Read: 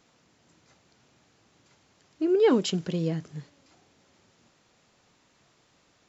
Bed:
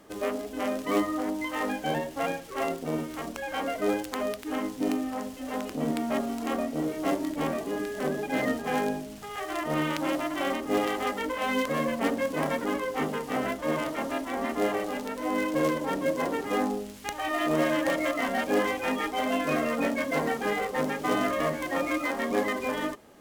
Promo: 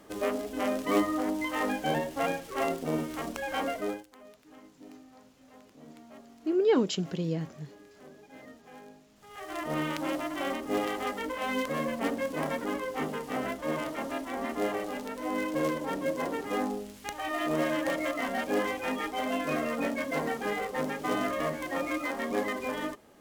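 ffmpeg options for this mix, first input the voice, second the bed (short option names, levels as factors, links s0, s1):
-filter_complex "[0:a]adelay=4250,volume=0.708[s0];[1:a]volume=8.41,afade=t=out:st=3.63:d=0.43:silence=0.0794328,afade=t=in:st=9.14:d=0.49:silence=0.11885[s1];[s0][s1]amix=inputs=2:normalize=0"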